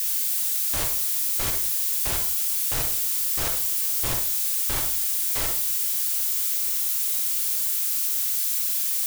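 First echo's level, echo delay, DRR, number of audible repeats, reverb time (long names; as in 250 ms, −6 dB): no echo audible, no echo audible, 3.5 dB, no echo audible, 0.45 s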